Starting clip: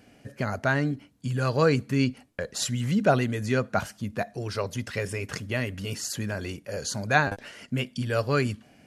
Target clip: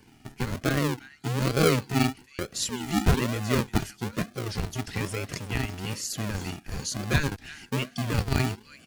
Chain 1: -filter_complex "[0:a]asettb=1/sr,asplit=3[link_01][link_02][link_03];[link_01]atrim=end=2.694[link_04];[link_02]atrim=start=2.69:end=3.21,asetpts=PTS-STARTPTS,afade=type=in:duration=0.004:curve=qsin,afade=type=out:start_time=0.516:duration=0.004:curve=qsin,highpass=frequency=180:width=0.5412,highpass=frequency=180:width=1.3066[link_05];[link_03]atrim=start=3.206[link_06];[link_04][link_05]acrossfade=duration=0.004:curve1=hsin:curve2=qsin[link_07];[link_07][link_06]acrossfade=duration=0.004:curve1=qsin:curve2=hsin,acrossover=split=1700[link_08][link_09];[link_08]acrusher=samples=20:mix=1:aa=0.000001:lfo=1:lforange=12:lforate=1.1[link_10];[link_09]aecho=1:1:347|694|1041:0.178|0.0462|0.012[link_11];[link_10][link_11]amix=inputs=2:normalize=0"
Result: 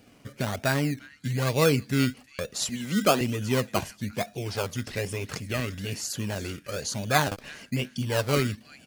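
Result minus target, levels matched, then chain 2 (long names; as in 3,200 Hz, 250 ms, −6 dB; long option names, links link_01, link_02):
sample-and-hold swept by an LFO: distortion −13 dB
-filter_complex "[0:a]asettb=1/sr,asplit=3[link_01][link_02][link_03];[link_01]atrim=end=2.694[link_04];[link_02]atrim=start=2.69:end=3.21,asetpts=PTS-STARTPTS,afade=type=in:duration=0.004:curve=qsin,afade=type=out:start_time=0.516:duration=0.004:curve=qsin,highpass=frequency=180:width=0.5412,highpass=frequency=180:width=1.3066[link_05];[link_03]atrim=start=3.206[link_06];[link_04][link_05]acrossfade=duration=0.004:curve1=hsin:curve2=qsin[link_07];[link_07][link_06]acrossfade=duration=0.004:curve1=qsin:curve2=hsin,acrossover=split=1700[link_08][link_09];[link_08]acrusher=samples=66:mix=1:aa=0.000001:lfo=1:lforange=39.6:lforate=1.1[link_10];[link_09]aecho=1:1:347|694|1041:0.178|0.0462|0.012[link_11];[link_10][link_11]amix=inputs=2:normalize=0"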